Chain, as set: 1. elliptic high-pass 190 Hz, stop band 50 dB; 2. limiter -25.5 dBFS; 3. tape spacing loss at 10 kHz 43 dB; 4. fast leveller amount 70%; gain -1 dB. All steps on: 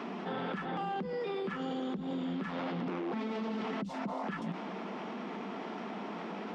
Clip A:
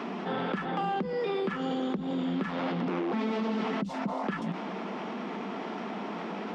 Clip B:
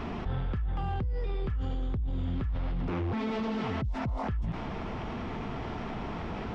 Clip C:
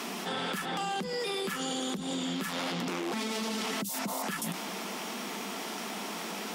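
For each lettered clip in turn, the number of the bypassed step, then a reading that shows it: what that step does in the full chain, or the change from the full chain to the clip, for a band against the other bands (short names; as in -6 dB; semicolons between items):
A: 2, mean gain reduction 2.0 dB; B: 1, 125 Hz band +12.5 dB; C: 3, 4 kHz band +12.5 dB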